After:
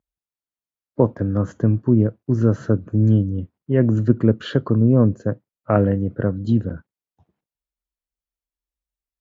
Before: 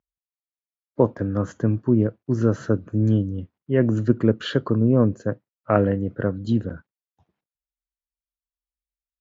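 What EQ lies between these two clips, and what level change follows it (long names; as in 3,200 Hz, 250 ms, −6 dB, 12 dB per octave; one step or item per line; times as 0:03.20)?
tilt shelving filter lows +4 dB, about 850 Hz
dynamic equaliser 370 Hz, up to −3 dB, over −24 dBFS, Q 0.91
+1.0 dB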